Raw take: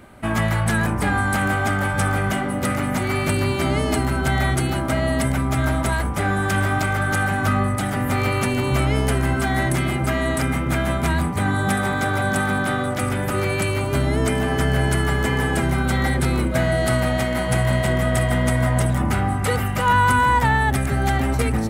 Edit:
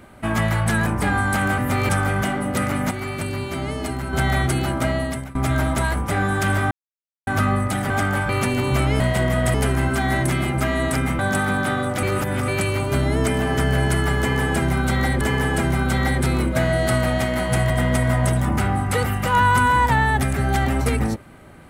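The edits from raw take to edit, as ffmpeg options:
-filter_complex "[0:a]asplit=17[a][b][c][d][e][f][g][h][i][j][k][l][m][n][o][p][q];[a]atrim=end=1.582[r];[b]atrim=start=7.978:end=8.292[s];[c]atrim=start=1.968:end=2.992[t];[d]atrim=start=2.988:end=4.212,asetpts=PTS-STARTPTS,volume=-6dB[u];[e]atrim=start=4.208:end=5.43,asetpts=PTS-STARTPTS,afade=t=out:st=0.742:d=0.48:silence=0.0749894[v];[f]atrim=start=5.43:end=6.79,asetpts=PTS-STARTPTS,afade=t=in:d=0.004:c=hsin:silence=0.0749894,afade=t=out:st=1.356:d=0.004:c=hsin[w];[g]atrim=start=6.79:end=7.35,asetpts=PTS-STARTPTS,volume=0[x];[h]atrim=start=7.35:end=7.982,asetpts=PTS-STARTPTS,afade=t=in:d=0.004:c=hsin[y];[i]atrim=start=1.578:end=1.972[z];[j]atrim=start=8.288:end=9.002[aa];[k]atrim=start=17.688:end=18.232[ab];[l]atrim=start=8.998:end=10.652[ac];[m]atrim=start=12.198:end=13.042[ad];[n]atrim=start=13.038:end=13.492,asetpts=PTS-STARTPTS,areverse[ae];[o]atrim=start=13.488:end=16.222[af];[p]atrim=start=15.198:end=17.692[ag];[q]atrim=start=18.228[ah];[r][s]acrossfade=d=0.004:c1=hsin:c2=hsin[ai];[ai][t]acrossfade=d=0.004:c1=hsin:c2=hsin[aj];[aj][u]acrossfade=d=0.004:c1=hsin:c2=hsin[ak];[v][w][x][y]concat=n=4:v=0:a=1[al];[ak][al]acrossfade=d=0.004:c1=hsin:c2=hsin[am];[am][z]acrossfade=d=0.004:c1=hsin:c2=hsin[an];[an][aa]acrossfade=d=0.004:c1=hsin:c2=hsin[ao];[ao][ab]acrossfade=d=0.004:c1=hsin:c2=hsin[ap];[ap][ac]acrossfade=d=0.004:c1=hsin:c2=hsin[aq];[aq][ad]acrossfade=d=0.004:c1=hsin:c2=hsin[ar];[ar][ae]acrossfade=d=0.004:c1=hsin:c2=hsin[as];[as][af]acrossfade=d=0.004:c1=hsin:c2=hsin[at];[at][ag]acrossfade=d=0.004:c1=hsin:c2=hsin[au];[au][ah]acrossfade=d=0.004:c1=hsin:c2=hsin"

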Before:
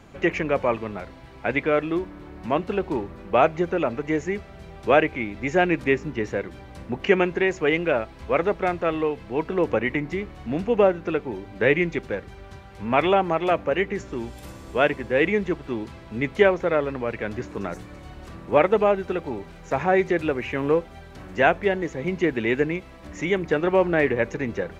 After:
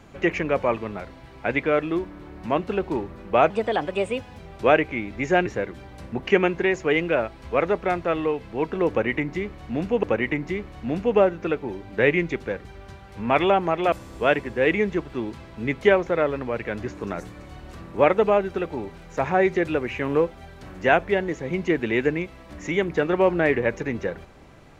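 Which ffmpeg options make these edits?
-filter_complex "[0:a]asplit=6[a][b][c][d][e][f];[a]atrim=end=3.504[g];[b]atrim=start=3.5:end=4.62,asetpts=PTS-STARTPTS,asetrate=56007,aresample=44100,atrim=end_sample=38891,asetpts=PTS-STARTPTS[h];[c]atrim=start=4.616:end=5.702[i];[d]atrim=start=6.228:end=10.802[j];[e]atrim=start=9.658:end=13.552[k];[f]atrim=start=14.458[l];[g][h]acrossfade=d=0.004:c1=hsin:c2=hsin[m];[m][i]acrossfade=d=0.004:c1=hsin:c2=hsin[n];[n][j]acrossfade=d=0.004:c1=hsin:c2=hsin[o];[o][k]acrossfade=d=0.004:c1=hsin:c2=hsin[p];[p][l]acrossfade=d=0.004:c1=hsin:c2=hsin"

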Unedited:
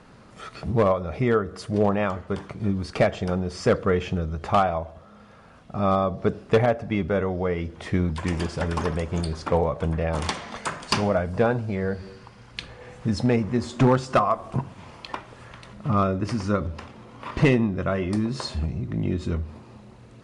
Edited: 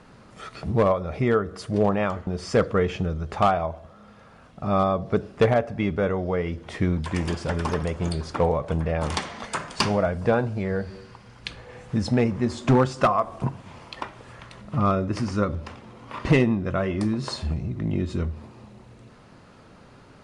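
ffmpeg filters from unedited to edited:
-filter_complex "[0:a]asplit=2[a][b];[a]atrim=end=2.272[c];[b]atrim=start=3.388[d];[c][d]acrossfade=d=0.004:c1=hsin:c2=hsin"

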